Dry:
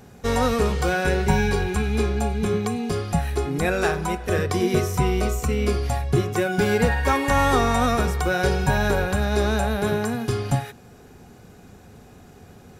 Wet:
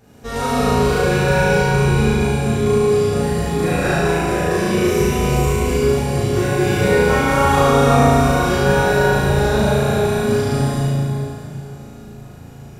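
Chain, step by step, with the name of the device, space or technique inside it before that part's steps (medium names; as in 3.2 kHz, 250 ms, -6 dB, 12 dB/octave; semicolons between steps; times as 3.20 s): tunnel (flutter echo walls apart 6.2 m, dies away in 1.1 s; reverberation RT60 3.1 s, pre-delay 8 ms, DRR -8.5 dB); trim -7.5 dB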